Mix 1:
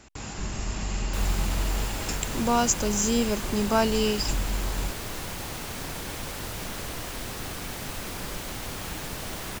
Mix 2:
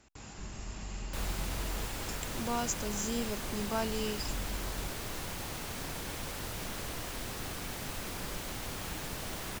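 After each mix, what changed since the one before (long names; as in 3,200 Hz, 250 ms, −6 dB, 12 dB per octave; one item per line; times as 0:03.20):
speech −11.0 dB
background −4.5 dB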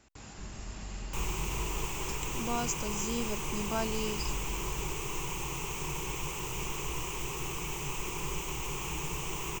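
background: add EQ curve with evenly spaced ripples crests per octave 0.72, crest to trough 15 dB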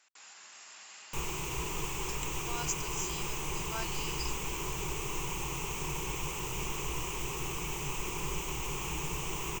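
speech: add high-pass filter 1,200 Hz 12 dB per octave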